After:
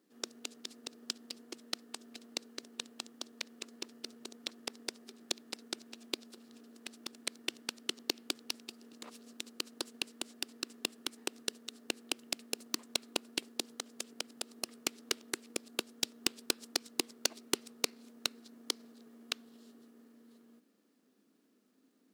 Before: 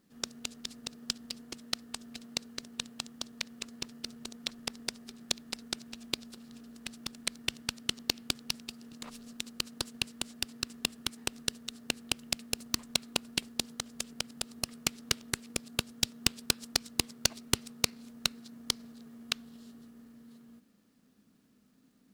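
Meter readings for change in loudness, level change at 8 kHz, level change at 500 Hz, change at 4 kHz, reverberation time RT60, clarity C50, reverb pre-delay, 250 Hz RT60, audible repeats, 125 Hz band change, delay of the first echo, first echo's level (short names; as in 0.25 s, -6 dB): -4.5 dB, -4.5 dB, +0.5 dB, -4.5 dB, none, none, none, none, none, -17.5 dB, none, none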